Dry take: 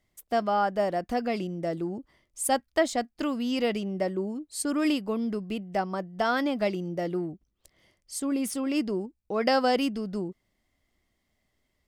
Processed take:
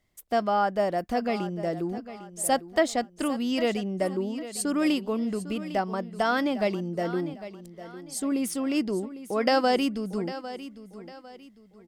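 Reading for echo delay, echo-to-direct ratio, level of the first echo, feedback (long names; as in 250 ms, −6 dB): 802 ms, −13.5 dB, −14.0 dB, 34%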